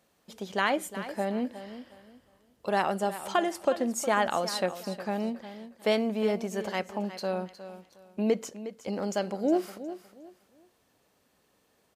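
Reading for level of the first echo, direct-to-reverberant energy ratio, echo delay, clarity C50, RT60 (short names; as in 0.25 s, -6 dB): -13.0 dB, none, 0.361 s, none, none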